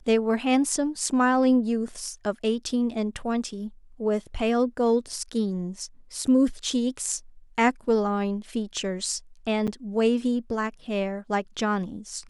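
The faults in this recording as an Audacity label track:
9.670000	9.680000	gap 6.7 ms

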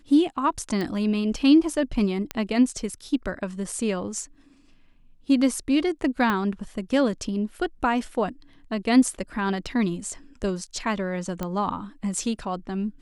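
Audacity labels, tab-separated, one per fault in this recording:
0.810000	0.810000	pop -17 dBFS
2.310000	2.310000	pop -12 dBFS
6.300000	6.300000	pop -12 dBFS
9.660000	9.660000	gap 4.4 ms
11.430000	11.430000	pop -15 dBFS

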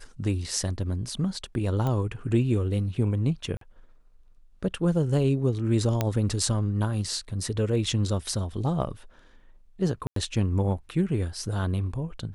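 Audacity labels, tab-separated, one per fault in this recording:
1.870000	1.870000	pop -17 dBFS
3.570000	3.610000	gap 43 ms
6.010000	6.010000	pop -10 dBFS
10.070000	10.160000	gap 93 ms

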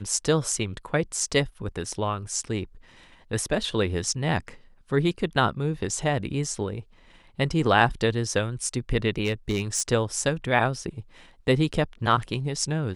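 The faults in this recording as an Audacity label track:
9.240000	9.820000	clipped -19 dBFS

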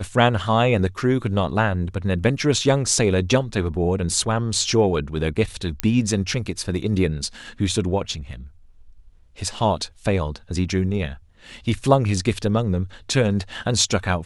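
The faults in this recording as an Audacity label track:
5.800000	5.800000	pop -5 dBFS

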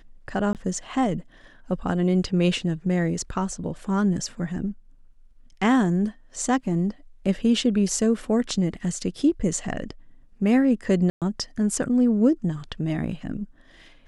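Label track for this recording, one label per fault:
0.530000	0.550000	gap 18 ms
11.100000	11.220000	gap 0.117 s

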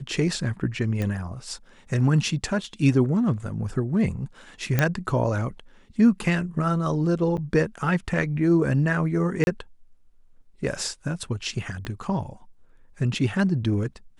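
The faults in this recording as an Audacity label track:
1.020000	1.020000	pop -16 dBFS
4.790000	4.790000	pop -7 dBFS
7.370000	7.380000	gap 7.8 ms
9.440000	9.470000	gap 31 ms
11.850000	11.850000	pop -20 dBFS

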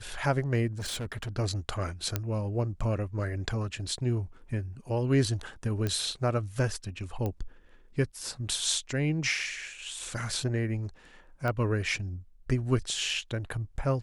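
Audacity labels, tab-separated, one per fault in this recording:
0.720000	1.300000	clipped -31.5 dBFS
2.160000	2.160000	pop -13 dBFS
5.870000	5.870000	pop -17 dBFS
7.260000	7.260000	pop -20 dBFS
11.480000	11.480000	pop -20 dBFS

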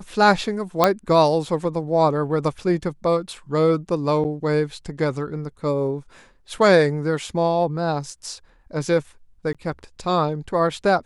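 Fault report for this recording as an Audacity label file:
0.840000	0.840000	pop -2 dBFS
4.240000	4.250000	gap 8.6 ms
9.530000	9.550000	gap 16 ms

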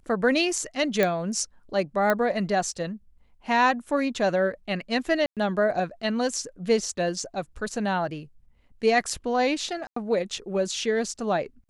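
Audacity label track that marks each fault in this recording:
1.030000	1.030000	pop -9 dBFS
2.100000	2.100000	pop -10 dBFS
5.260000	5.370000	gap 0.107 s
9.870000	9.960000	gap 94 ms

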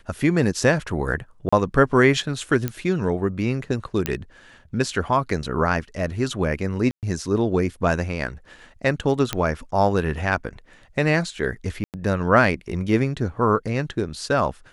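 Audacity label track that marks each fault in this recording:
1.490000	1.520000	gap 35 ms
2.680000	2.680000	pop -10 dBFS
4.060000	4.060000	pop -7 dBFS
6.910000	7.030000	gap 0.118 s
9.330000	9.330000	pop -7 dBFS
11.840000	11.940000	gap 98 ms

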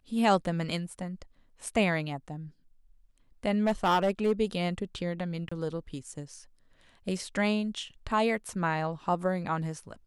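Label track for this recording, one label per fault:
3.660000	4.320000	clipped -20 dBFS
5.490000	5.510000	gap 25 ms

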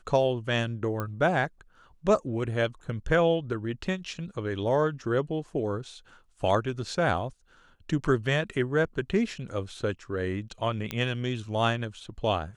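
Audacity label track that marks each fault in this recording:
1.000000	1.000000	pop -18 dBFS
10.910000	10.910000	pop -15 dBFS

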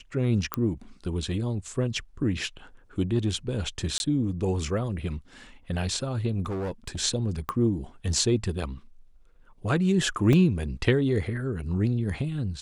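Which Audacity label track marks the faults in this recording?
0.540000	0.540000	pop -11 dBFS
3.980000	4.000000	gap 21 ms
6.460000	7.000000	clipped -27.5 dBFS
7.490000	7.490000	pop -16 dBFS
10.330000	10.330000	gap 2.2 ms

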